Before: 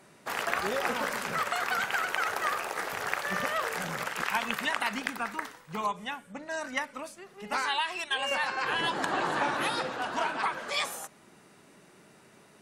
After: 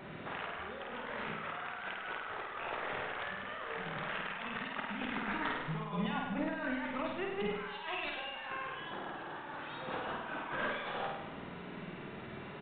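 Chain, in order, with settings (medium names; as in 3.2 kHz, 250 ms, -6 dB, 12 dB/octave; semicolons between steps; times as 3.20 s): bass shelf 95 Hz +10.5 dB; compressor with a negative ratio -42 dBFS, ratio -1; flutter echo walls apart 8.7 m, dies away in 0.94 s; resampled via 8 kHz; trim -1 dB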